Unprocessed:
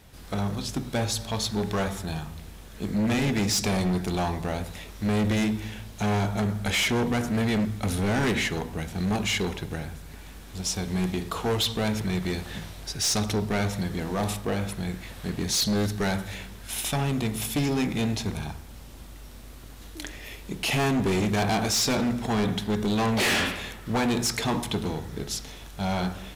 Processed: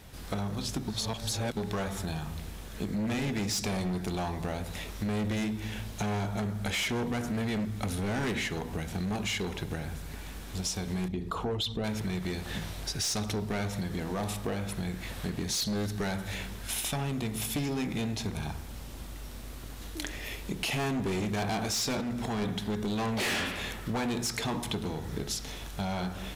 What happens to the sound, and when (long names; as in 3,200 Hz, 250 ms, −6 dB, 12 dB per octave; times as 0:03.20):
0:00.88–0:01.57: reverse
0:11.08–0:11.84: spectral envelope exaggerated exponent 1.5
0:22.01–0:22.42: downward compressor, threshold −27 dBFS
whole clip: downward compressor 6 to 1, threshold −32 dBFS; level +2 dB